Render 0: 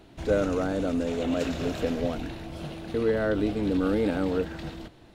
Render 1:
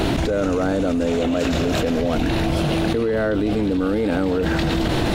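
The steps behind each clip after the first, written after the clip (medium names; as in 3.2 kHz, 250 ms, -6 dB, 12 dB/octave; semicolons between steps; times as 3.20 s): level flattener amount 100%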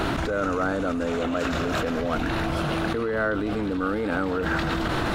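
peaking EQ 1.3 kHz +11.5 dB 0.96 oct; trim -7 dB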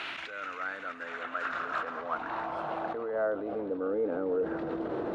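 band-pass sweep 2.5 kHz -> 450 Hz, 0.25–4.04 s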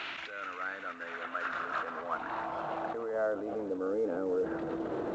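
trim -1.5 dB; A-law 128 kbps 16 kHz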